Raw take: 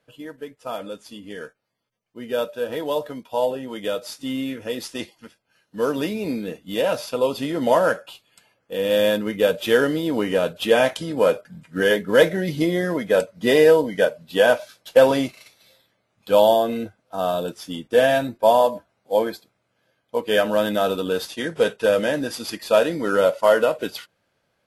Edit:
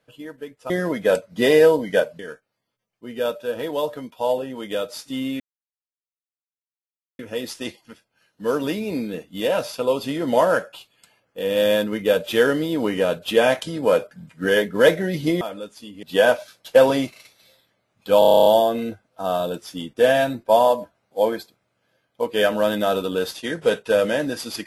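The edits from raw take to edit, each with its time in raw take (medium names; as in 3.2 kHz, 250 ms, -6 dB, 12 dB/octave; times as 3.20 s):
0.70–1.32 s: swap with 12.75–14.24 s
4.53 s: insert silence 1.79 s
16.40 s: stutter 0.03 s, 10 plays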